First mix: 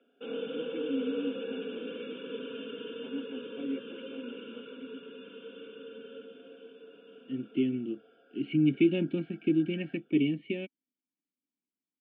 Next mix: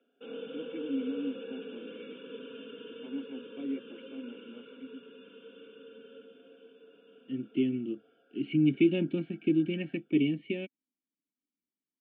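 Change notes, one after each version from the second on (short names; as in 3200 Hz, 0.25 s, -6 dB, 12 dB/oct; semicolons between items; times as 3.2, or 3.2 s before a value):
background -5.0 dB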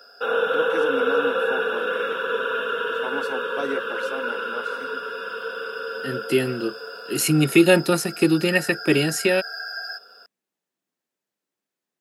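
second voice: entry -1.25 s; master: remove vocal tract filter i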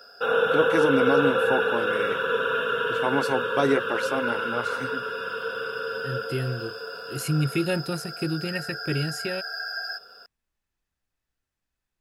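first voice +7.0 dB; second voice -11.5 dB; master: remove HPF 200 Hz 24 dB/oct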